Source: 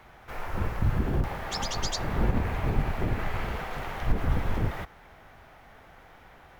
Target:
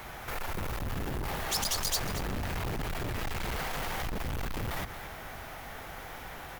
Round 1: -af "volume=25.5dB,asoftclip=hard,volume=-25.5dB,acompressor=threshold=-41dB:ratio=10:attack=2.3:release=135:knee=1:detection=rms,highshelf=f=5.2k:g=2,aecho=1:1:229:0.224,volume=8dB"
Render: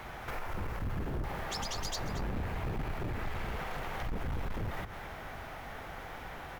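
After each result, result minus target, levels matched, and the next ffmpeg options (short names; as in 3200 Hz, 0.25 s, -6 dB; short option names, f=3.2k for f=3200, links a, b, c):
8000 Hz band -6.5 dB; overloaded stage: distortion -5 dB
-af "volume=25.5dB,asoftclip=hard,volume=-25.5dB,acompressor=threshold=-41dB:ratio=10:attack=2.3:release=135:knee=1:detection=rms,highshelf=f=5.2k:g=13.5,aecho=1:1:229:0.224,volume=8dB"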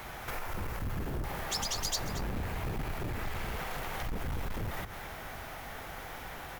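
overloaded stage: distortion -5 dB
-af "volume=34.5dB,asoftclip=hard,volume=-34.5dB,acompressor=threshold=-41dB:ratio=10:attack=2.3:release=135:knee=1:detection=rms,highshelf=f=5.2k:g=13.5,aecho=1:1:229:0.224,volume=8dB"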